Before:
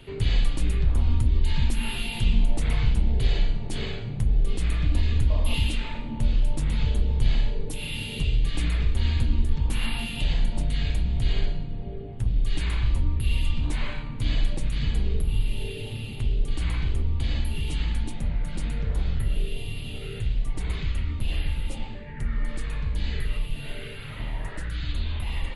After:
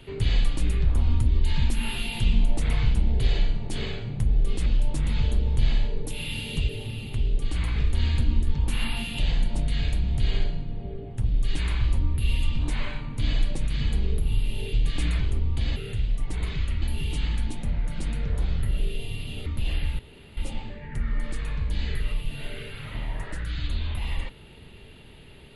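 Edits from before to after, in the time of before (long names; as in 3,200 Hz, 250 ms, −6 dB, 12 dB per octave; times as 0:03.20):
0:04.66–0:06.29: remove
0:08.32–0:08.78: swap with 0:15.75–0:16.82
0:20.03–0:21.09: move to 0:17.39
0:21.62: splice in room tone 0.38 s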